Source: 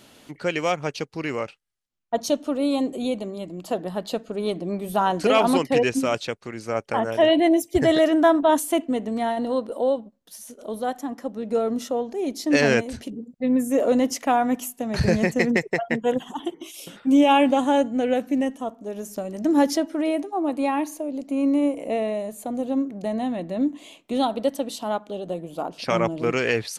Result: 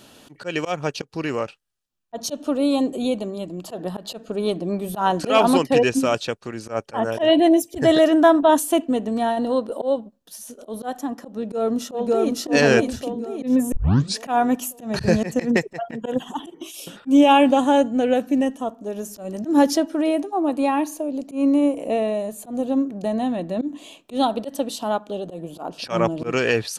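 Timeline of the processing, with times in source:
0:11.38–0:12.36: delay throw 560 ms, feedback 45%, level −1 dB
0:13.72: tape start 0.51 s
whole clip: notch filter 2,100 Hz, Q 6.4; volume swells 110 ms; level +3 dB

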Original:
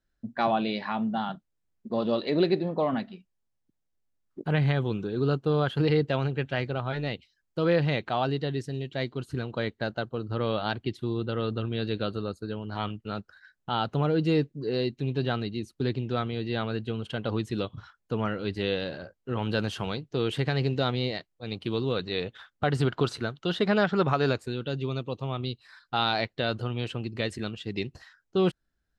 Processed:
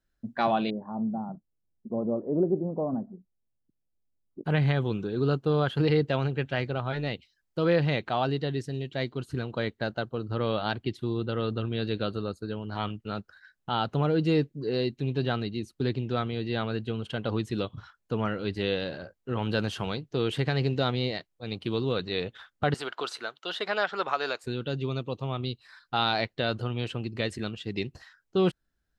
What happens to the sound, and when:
0:00.70–0:04.45: Gaussian smoothing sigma 11 samples
0:22.74–0:24.44: high-pass filter 630 Hz

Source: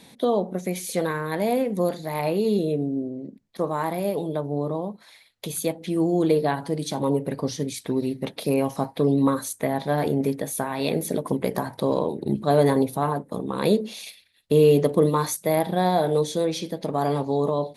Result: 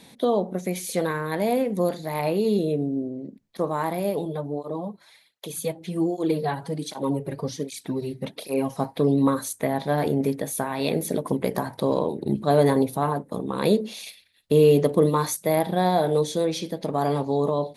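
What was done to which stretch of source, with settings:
0:04.25–0:08.80: through-zero flanger with one copy inverted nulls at 1.3 Hz, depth 4.6 ms

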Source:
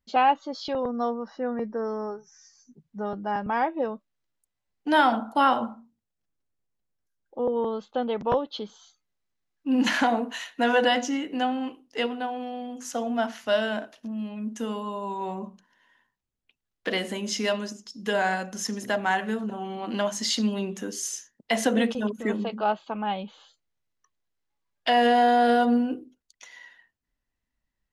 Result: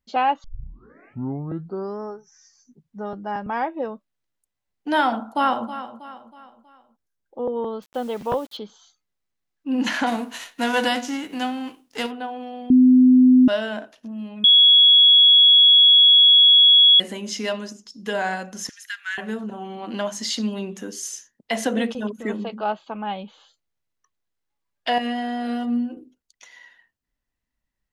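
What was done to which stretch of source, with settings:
0:00.44: tape start 1.57 s
0:05.09–0:05.68: delay throw 320 ms, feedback 45%, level −12.5 dB
0:07.82–0:08.57: bit-depth reduction 8 bits, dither none
0:10.06–0:12.10: spectral envelope flattened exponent 0.6
0:12.70–0:13.48: beep over 254 Hz −9 dBFS
0:14.44–0:17.00: beep over 3,350 Hz −9 dBFS
0:18.69–0:19.18: elliptic high-pass filter 1,500 Hz, stop band 60 dB
0:24.98–0:25.97: stiff-string resonator 77 Hz, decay 0.21 s, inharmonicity 0.008

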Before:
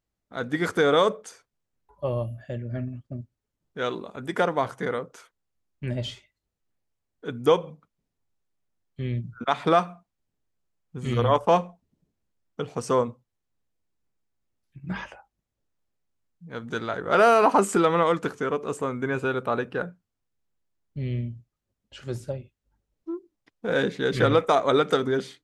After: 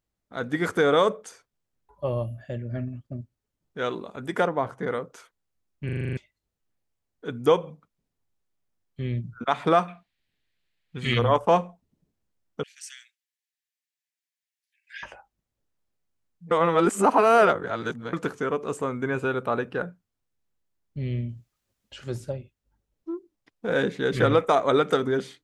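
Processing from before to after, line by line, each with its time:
0:04.47–0:04.88: high-shelf EQ 2,200 Hz −11 dB
0:05.85: stutter in place 0.04 s, 8 plays
0:09.88–0:11.19: flat-topped bell 2,700 Hz +14.5 dB
0:12.63–0:15.03: Butterworth high-pass 1,600 Hz 96 dB per octave
0:16.51–0:18.13: reverse
0:21.29–0:22.25: one half of a high-frequency compander encoder only
whole clip: dynamic equaliser 4,600 Hz, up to −4 dB, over −45 dBFS, Q 1.5

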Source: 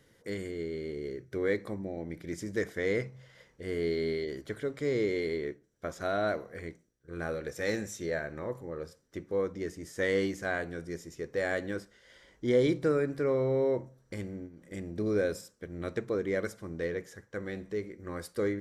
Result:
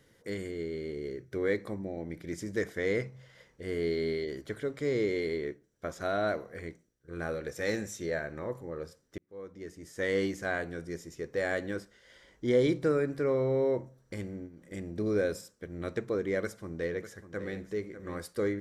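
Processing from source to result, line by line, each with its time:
0:09.18–0:10.25: fade in
0:16.42–0:17.60: delay throw 600 ms, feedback 15%, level −12 dB

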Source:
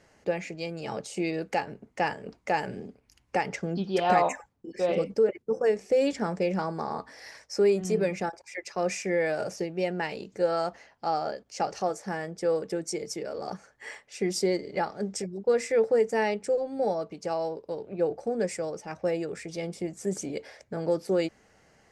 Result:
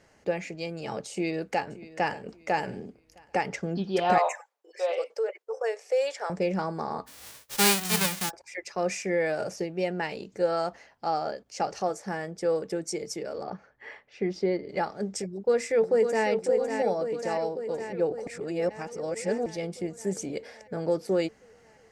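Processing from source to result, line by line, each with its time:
0:01.12–0:02.21: delay throw 580 ms, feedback 30%, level −17.5 dB
0:04.18–0:06.30: Butterworth high-pass 490 Hz
0:07.06–0:08.29: spectral envelope flattened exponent 0.1
0:13.43–0:14.69: high-frequency loss of the air 260 metres
0:15.26–0:16.27: delay throw 550 ms, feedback 70%, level −6.5 dB
0:18.27–0:19.46: reverse

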